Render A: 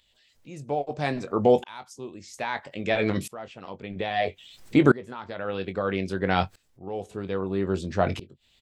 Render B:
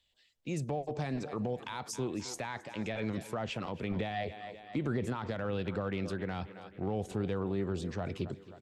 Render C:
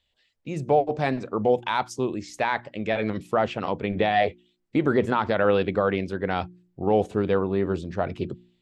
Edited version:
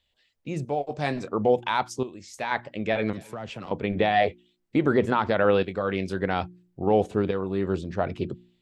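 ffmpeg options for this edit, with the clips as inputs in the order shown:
-filter_complex "[0:a]asplit=4[a][b][c][d];[2:a]asplit=6[e][f][g][h][i][j];[e]atrim=end=0.652[k];[a]atrim=start=0.648:end=1.282[l];[f]atrim=start=1.278:end=2.032[m];[b]atrim=start=2.028:end=2.512[n];[g]atrim=start=2.508:end=3.132[o];[1:a]atrim=start=3.128:end=3.712[p];[h]atrim=start=3.708:end=5.632[q];[c]atrim=start=5.628:end=6.262[r];[i]atrim=start=6.258:end=7.312[s];[d]atrim=start=7.308:end=7.752[t];[j]atrim=start=7.748[u];[k][l]acrossfade=d=0.004:c1=hsin:c2=hsin[v];[v][m]acrossfade=d=0.004:c1=hsin:c2=hsin[w];[w][n]acrossfade=d=0.004:c1=hsin:c2=hsin[x];[x][o]acrossfade=d=0.004:c1=hsin:c2=hsin[y];[y][p]acrossfade=d=0.004:c1=hsin:c2=hsin[z];[z][q]acrossfade=d=0.004:c1=hsin:c2=hsin[aa];[aa][r]acrossfade=d=0.004:c1=hsin:c2=hsin[ab];[ab][s]acrossfade=d=0.004:c1=hsin:c2=hsin[ac];[ac][t]acrossfade=d=0.004:c1=hsin:c2=hsin[ad];[ad][u]acrossfade=d=0.004:c1=hsin:c2=hsin"

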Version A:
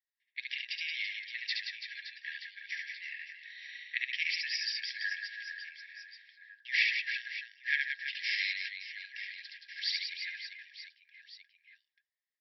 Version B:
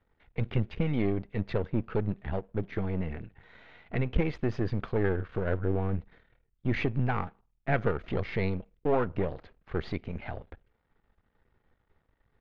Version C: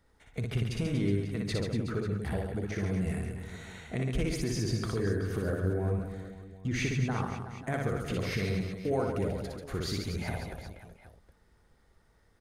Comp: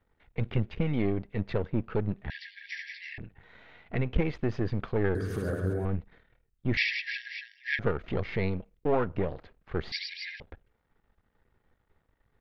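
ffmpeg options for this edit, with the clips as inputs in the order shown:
-filter_complex "[0:a]asplit=3[a][b][c];[1:a]asplit=5[d][e][f][g][h];[d]atrim=end=2.302[i];[a]atrim=start=2.298:end=3.182[j];[e]atrim=start=3.178:end=5.152[k];[2:a]atrim=start=5.148:end=5.852[l];[f]atrim=start=5.848:end=6.772[m];[b]atrim=start=6.768:end=7.792[n];[g]atrim=start=7.788:end=9.922[o];[c]atrim=start=9.918:end=10.402[p];[h]atrim=start=10.398[q];[i][j]acrossfade=d=0.004:c1=hsin:c2=hsin[r];[r][k]acrossfade=d=0.004:c1=hsin:c2=hsin[s];[s][l]acrossfade=d=0.004:c1=hsin:c2=hsin[t];[t][m]acrossfade=d=0.004:c1=hsin:c2=hsin[u];[u][n]acrossfade=d=0.004:c1=hsin:c2=hsin[v];[v][o]acrossfade=d=0.004:c1=hsin:c2=hsin[w];[w][p]acrossfade=d=0.004:c1=hsin:c2=hsin[x];[x][q]acrossfade=d=0.004:c1=hsin:c2=hsin"

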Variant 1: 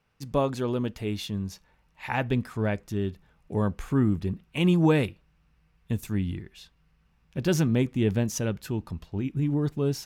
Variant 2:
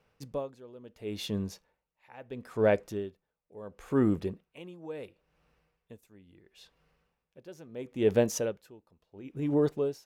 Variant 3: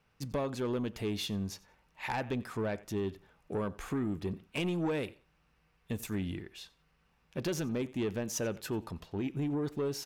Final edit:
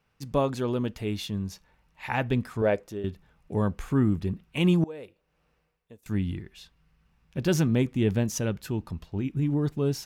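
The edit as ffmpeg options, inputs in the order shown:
-filter_complex "[1:a]asplit=2[a][b];[0:a]asplit=3[c][d][e];[c]atrim=end=2.622[f];[a]atrim=start=2.618:end=3.042[g];[d]atrim=start=3.038:end=4.842[h];[b]atrim=start=4.838:end=6.062[i];[e]atrim=start=6.058[j];[f][g]acrossfade=d=0.004:c1=hsin:c2=hsin[k];[k][h]acrossfade=d=0.004:c1=hsin:c2=hsin[l];[l][i]acrossfade=d=0.004:c1=hsin:c2=hsin[m];[m][j]acrossfade=d=0.004:c1=hsin:c2=hsin"

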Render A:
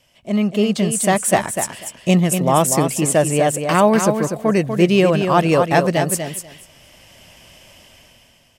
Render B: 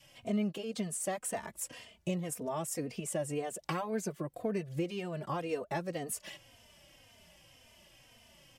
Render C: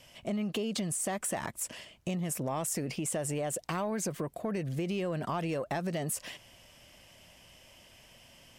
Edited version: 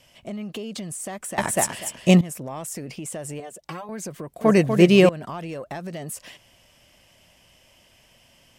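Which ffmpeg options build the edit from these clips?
-filter_complex "[0:a]asplit=2[a][b];[2:a]asplit=4[c][d][e][f];[c]atrim=end=1.382[g];[a]atrim=start=1.378:end=2.212[h];[d]atrim=start=2.208:end=3.402[i];[1:a]atrim=start=3.398:end=3.892[j];[e]atrim=start=3.888:end=4.412[k];[b]atrim=start=4.408:end=5.092[l];[f]atrim=start=5.088[m];[g][h]acrossfade=d=0.004:c1=hsin:c2=hsin[n];[n][i]acrossfade=d=0.004:c1=hsin:c2=hsin[o];[o][j]acrossfade=d=0.004:c1=hsin:c2=hsin[p];[p][k]acrossfade=d=0.004:c1=hsin:c2=hsin[q];[q][l]acrossfade=d=0.004:c1=hsin:c2=hsin[r];[r][m]acrossfade=d=0.004:c1=hsin:c2=hsin"

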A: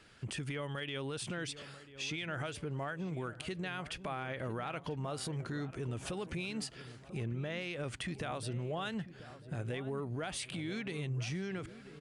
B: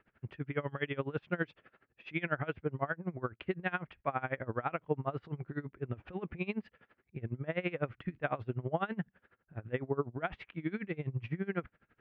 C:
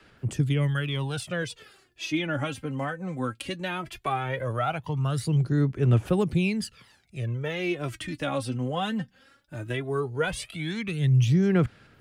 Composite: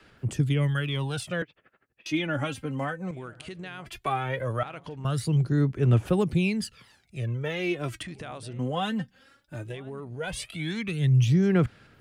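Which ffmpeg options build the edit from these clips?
-filter_complex "[0:a]asplit=4[a][b][c][d];[2:a]asplit=6[e][f][g][h][i][j];[e]atrim=end=1.422[k];[1:a]atrim=start=1.418:end=2.062[l];[f]atrim=start=2.058:end=3.112[m];[a]atrim=start=3.108:end=3.862[n];[g]atrim=start=3.858:end=4.632[o];[b]atrim=start=4.628:end=5.052[p];[h]atrim=start=5.048:end=8.032[q];[c]atrim=start=8.028:end=8.592[r];[i]atrim=start=8.588:end=9.8[s];[d]atrim=start=9.56:end=10.37[t];[j]atrim=start=10.13[u];[k][l]acrossfade=d=0.004:c1=hsin:c2=hsin[v];[v][m]acrossfade=d=0.004:c1=hsin:c2=hsin[w];[w][n]acrossfade=d=0.004:c1=hsin:c2=hsin[x];[x][o]acrossfade=d=0.004:c1=hsin:c2=hsin[y];[y][p]acrossfade=d=0.004:c1=hsin:c2=hsin[z];[z][q]acrossfade=d=0.004:c1=hsin:c2=hsin[aa];[aa][r]acrossfade=d=0.004:c1=hsin:c2=hsin[ab];[ab][s]acrossfade=d=0.004:c1=hsin:c2=hsin[ac];[ac][t]acrossfade=d=0.24:c1=tri:c2=tri[ad];[ad][u]acrossfade=d=0.24:c1=tri:c2=tri"

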